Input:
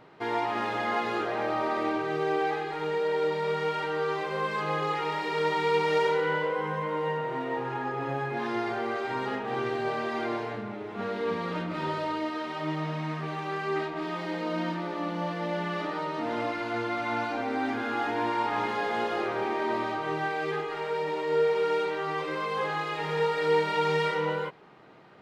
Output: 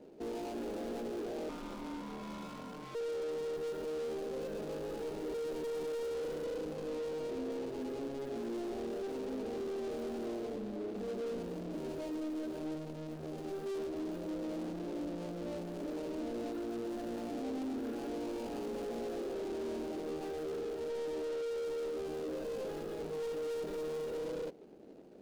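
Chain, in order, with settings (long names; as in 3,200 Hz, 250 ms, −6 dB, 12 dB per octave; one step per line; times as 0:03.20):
running median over 41 samples
in parallel at −0.5 dB: brickwall limiter −30 dBFS, peak gain reduction 11 dB
0:01.49–0:02.95: on the sum: ring modulation 600 Hz
hard clipping −34 dBFS, distortion −6 dB
octave-band graphic EQ 125/250/500/1,000/2,000 Hz −12/+7/+5/−5/−6 dB
level −6.5 dB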